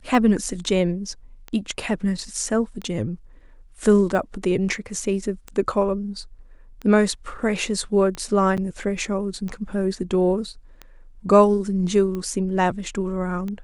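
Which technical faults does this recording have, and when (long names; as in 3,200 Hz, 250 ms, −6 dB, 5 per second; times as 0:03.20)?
scratch tick 45 rpm
0:08.57–0:08.58: drop-out 7.7 ms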